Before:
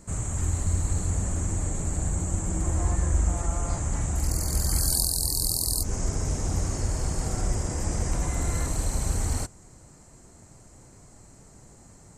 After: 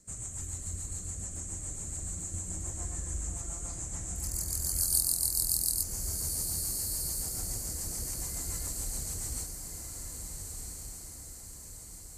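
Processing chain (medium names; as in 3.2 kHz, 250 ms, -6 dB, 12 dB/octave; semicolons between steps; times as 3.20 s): rotary cabinet horn 7 Hz; pre-emphasis filter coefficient 0.8; echo that smears into a reverb 1475 ms, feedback 53%, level -5 dB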